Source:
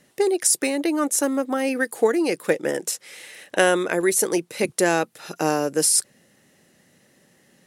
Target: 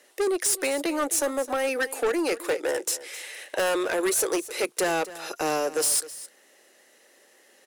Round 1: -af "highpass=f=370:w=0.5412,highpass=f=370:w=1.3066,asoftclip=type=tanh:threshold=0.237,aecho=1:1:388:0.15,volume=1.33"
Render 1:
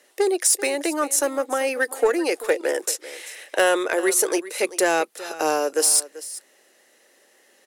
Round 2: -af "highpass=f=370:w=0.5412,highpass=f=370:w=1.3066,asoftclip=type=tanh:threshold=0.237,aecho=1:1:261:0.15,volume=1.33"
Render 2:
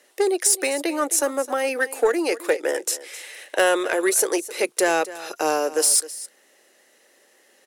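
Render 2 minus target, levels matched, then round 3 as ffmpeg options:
saturation: distortion -10 dB
-af "highpass=f=370:w=0.5412,highpass=f=370:w=1.3066,asoftclip=type=tanh:threshold=0.0708,aecho=1:1:261:0.15,volume=1.33"

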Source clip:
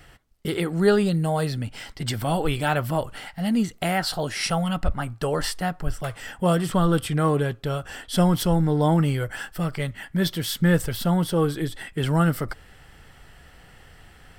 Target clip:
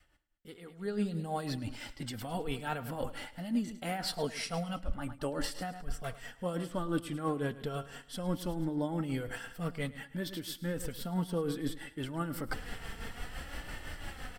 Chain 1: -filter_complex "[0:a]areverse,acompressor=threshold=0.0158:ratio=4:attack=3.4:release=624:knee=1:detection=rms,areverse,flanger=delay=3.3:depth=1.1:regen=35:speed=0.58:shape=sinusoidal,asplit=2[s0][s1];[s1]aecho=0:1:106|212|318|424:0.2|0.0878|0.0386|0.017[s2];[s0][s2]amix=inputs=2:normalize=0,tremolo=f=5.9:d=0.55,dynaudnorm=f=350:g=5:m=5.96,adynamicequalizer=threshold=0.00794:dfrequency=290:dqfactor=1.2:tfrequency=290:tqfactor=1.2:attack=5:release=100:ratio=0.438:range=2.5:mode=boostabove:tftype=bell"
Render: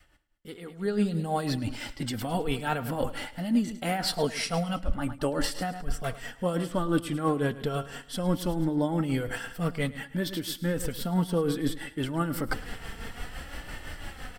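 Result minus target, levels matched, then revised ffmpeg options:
compression: peak gain reduction -6.5 dB
-filter_complex "[0:a]areverse,acompressor=threshold=0.00562:ratio=4:attack=3.4:release=624:knee=1:detection=rms,areverse,flanger=delay=3.3:depth=1.1:regen=35:speed=0.58:shape=sinusoidal,asplit=2[s0][s1];[s1]aecho=0:1:106|212|318|424:0.2|0.0878|0.0386|0.017[s2];[s0][s2]amix=inputs=2:normalize=0,tremolo=f=5.9:d=0.55,dynaudnorm=f=350:g=5:m=5.96,adynamicequalizer=threshold=0.00794:dfrequency=290:dqfactor=1.2:tfrequency=290:tqfactor=1.2:attack=5:release=100:ratio=0.438:range=2.5:mode=boostabove:tftype=bell"

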